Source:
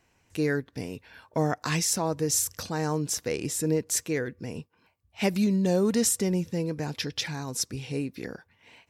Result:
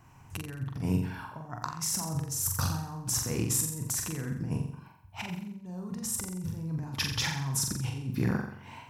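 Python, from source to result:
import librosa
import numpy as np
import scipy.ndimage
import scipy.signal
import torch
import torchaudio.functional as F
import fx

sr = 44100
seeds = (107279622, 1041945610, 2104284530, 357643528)

p1 = fx.graphic_eq(x, sr, hz=(125, 500, 1000, 2000, 4000, 8000), db=(11, -11, 9, -7, -8, -4))
p2 = fx.over_compress(p1, sr, threshold_db=-36.0, ratio=-1.0)
y = p2 + fx.room_flutter(p2, sr, wall_m=7.5, rt60_s=0.64, dry=0)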